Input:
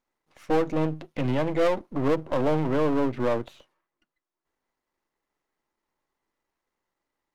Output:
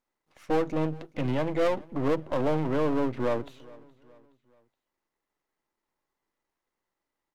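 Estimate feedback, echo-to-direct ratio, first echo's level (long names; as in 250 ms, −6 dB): 45%, −22.0 dB, −23.0 dB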